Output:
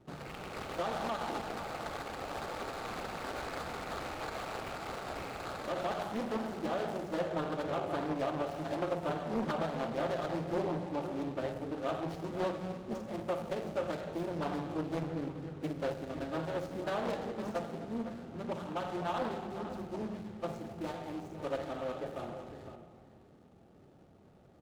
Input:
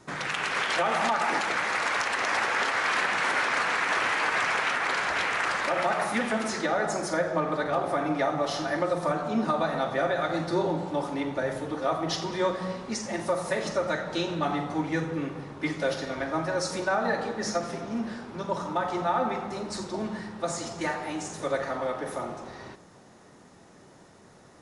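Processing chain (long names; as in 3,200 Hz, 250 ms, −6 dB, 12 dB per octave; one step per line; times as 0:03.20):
running median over 25 samples
parametric band 65 Hz +5.5 dB 1.7 octaves
notch filter 1,000 Hz, Q 5.9
slap from a distant wall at 87 metres, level −10 dB
highs frequency-modulated by the lows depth 0.82 ms
level −6.5 dB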